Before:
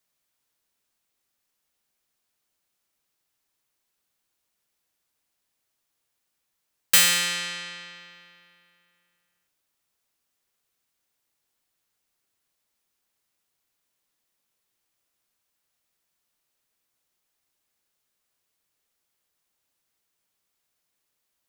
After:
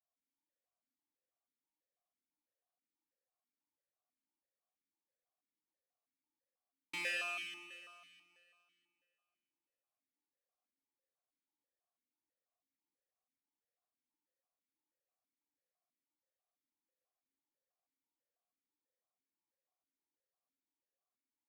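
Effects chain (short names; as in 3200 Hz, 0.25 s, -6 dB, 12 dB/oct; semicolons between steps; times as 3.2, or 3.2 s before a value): Wiener smoothing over 15 samples; 7.37–7.83 bell 410 Hz -8.5 dB 2.3 oct; Schroeder reverb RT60 2.3 s, combs from 33 ms, DRR -2 dB; vowel sequencer 6.1 Hz; gain -4 dB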